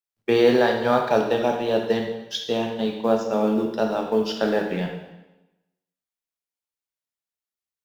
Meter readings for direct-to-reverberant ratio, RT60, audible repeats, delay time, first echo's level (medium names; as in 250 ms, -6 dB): 2.0 dB, 1.0 s, no echo, no echo, no echo